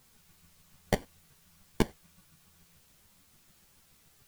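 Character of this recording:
aliases and images of a low sample rate 1,300 Hz, jitter 0%
chopped level 6.9 Hz, depth 60%, duty 15%
a quantiser's noise floor 12 bits, dither triangular
a shimmering, thickened sound

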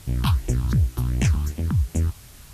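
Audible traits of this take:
phaser sweep stages 6, 2.7 Hz, lowest notch 500–1,300 Hz
a quantiser's noise floor 8 bits, dither triangular
Ogg Vorbis

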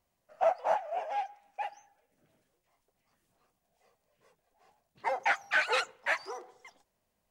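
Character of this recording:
background noise floor −80 dBFS
spectral slope +3.0 dB per octave

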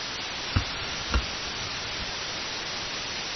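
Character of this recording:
a buzz of ramps at a fixed pitch in blocks of 32 samples
tremolo saw up 0.98 Hz, depth 80%
a quantiser's noise floor 6 bits, dither triangular
MP3

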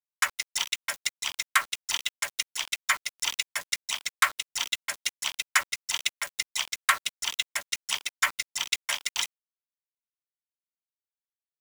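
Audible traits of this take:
a quantiser's noise floor 6 bits, dither none
tremolo triangle 2.2 Hz, depth 40%

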